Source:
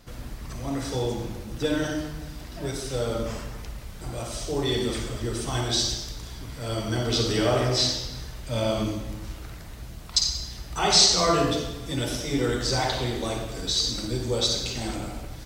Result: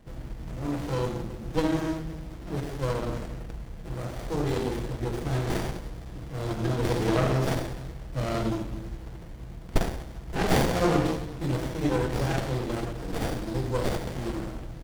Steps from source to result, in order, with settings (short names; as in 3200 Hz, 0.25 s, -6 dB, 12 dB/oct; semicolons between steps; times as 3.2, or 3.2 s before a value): comb 6.3 ms, depth 33%; speed mistake 24 fps film run at 25 fps; running maximum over 33 samples